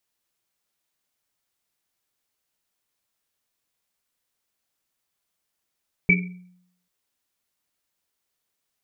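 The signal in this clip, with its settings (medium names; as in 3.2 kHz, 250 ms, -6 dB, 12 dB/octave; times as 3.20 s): Risset drum length 0.79 s, pitch 180 Hz, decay 0.74 s, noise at 2.3 kHz, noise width 120 Hz, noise 45%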